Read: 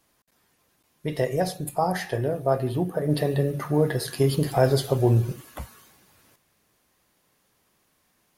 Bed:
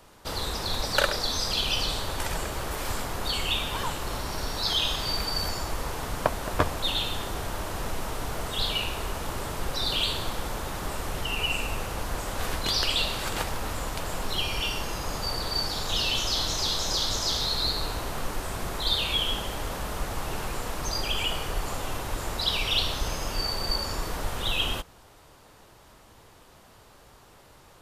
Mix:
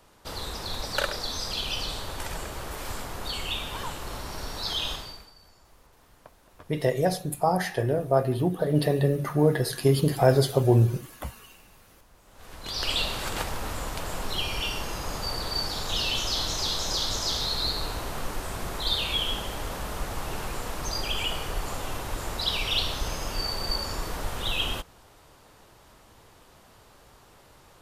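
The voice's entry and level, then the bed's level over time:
5.65 s, +0.5 dB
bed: 4.93 s -4 dB
5.36 s -26.5 dB
12.20 s -26.5 dB
12.90 s -1 dB

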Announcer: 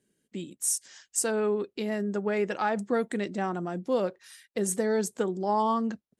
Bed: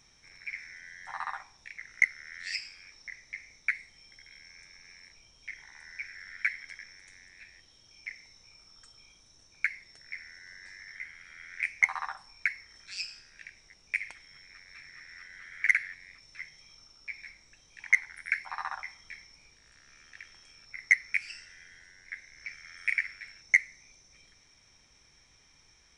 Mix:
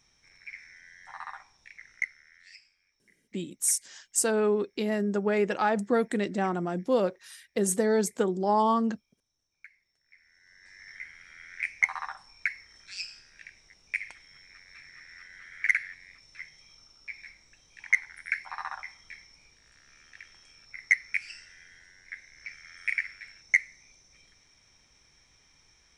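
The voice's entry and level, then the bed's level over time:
3.00 s, +2.0 dB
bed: 1.88 s -4.5 dB
2.79 s -21.5 dB
10.00 s -21.5 dB
10.88 s -0.5 dB

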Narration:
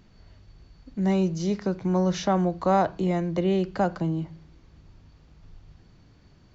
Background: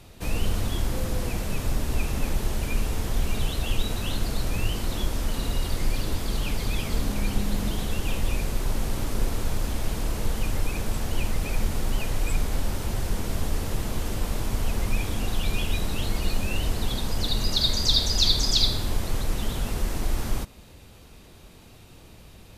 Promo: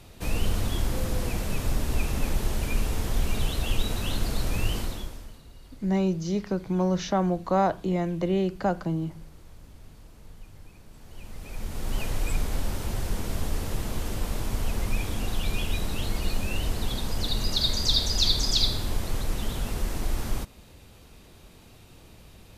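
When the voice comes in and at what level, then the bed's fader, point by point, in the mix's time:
4.85 s, -1.5 dB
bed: 4.79 s -0.5 dB
5.45 s -23.5 dB
10.88 s -23.5 dB
11.99 s -2 dB

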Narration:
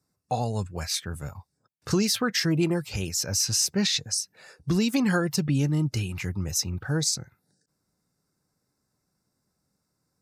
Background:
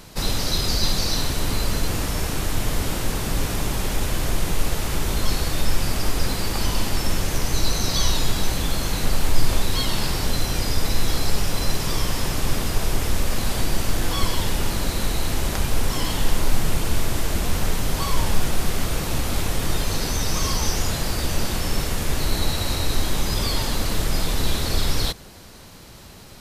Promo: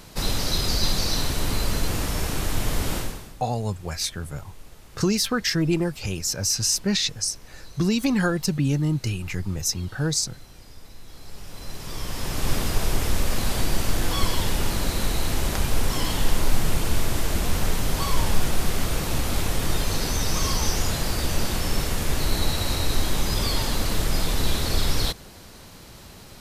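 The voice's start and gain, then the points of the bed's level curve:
3.10 s, +1.5 dB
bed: 2.98 s -1.5 dB
3.39 s -23.5 dB
11.04 s -23.5 dB
12.51 s -1 dB

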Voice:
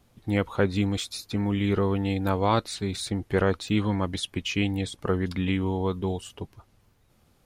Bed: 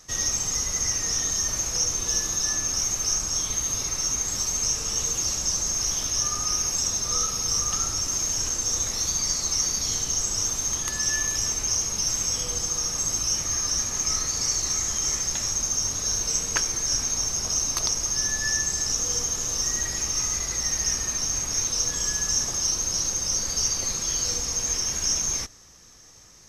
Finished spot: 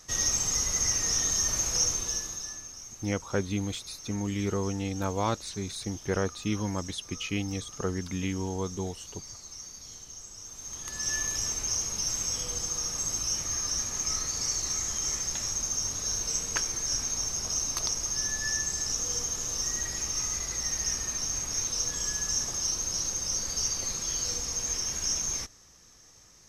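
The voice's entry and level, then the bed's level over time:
2.75 s, -5.5 dB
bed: 1.86 s -1.5 dB
2.78 s -19 dB
10.43 s -19 dB
11.12 s -5 dB

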